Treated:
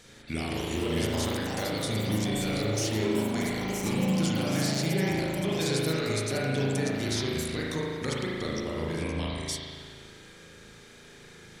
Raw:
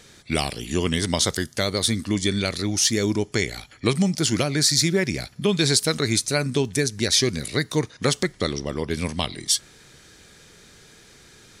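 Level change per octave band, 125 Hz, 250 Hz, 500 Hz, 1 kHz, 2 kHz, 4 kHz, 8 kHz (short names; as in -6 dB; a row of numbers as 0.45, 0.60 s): -4.0, -4.0, -5.0, -3.5, -6.0, -10.5, -12.0 dB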